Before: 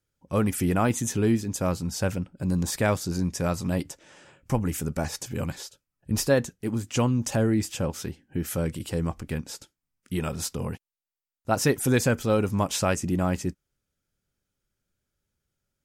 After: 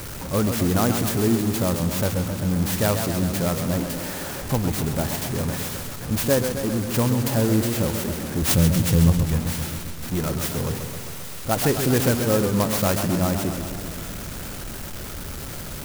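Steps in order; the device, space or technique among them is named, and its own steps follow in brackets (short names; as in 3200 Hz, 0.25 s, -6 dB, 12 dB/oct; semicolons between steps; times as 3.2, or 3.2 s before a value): 8.42–9.26 tone controls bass +12 dB, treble +15 dB; early CD player with a faulty converter (zero-crossing step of -27 dBFS; clock jitter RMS 0.088 ms); warbling echo 0.131 s, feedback 69%, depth 134 cents, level -7.5 dB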